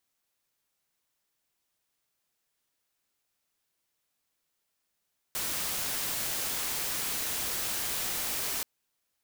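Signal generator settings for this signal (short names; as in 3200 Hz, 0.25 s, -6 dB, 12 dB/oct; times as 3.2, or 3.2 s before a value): noise white, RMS -32.5 dBFS 3.28 s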